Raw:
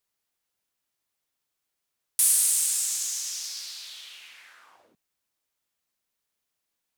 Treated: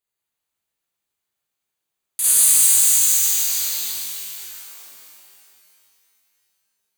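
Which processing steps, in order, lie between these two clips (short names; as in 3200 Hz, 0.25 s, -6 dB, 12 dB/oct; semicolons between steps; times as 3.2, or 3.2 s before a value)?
2.24–3.9 sample leveller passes 2; in parallel at -7 dB: sample gate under -30.5 dBFS; on the sum: Butterworth band-stop 5400 Hz, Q 5.1; shimmer reverb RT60 2.6 s, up +12 st, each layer -2 dB, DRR -4.5 dB; gain -5.5 dB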